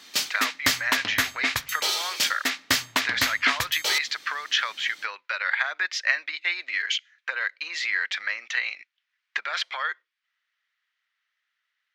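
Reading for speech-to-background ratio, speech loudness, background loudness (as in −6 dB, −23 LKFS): −2.0 dB, −27.5 LKFS, −25.5 LKFS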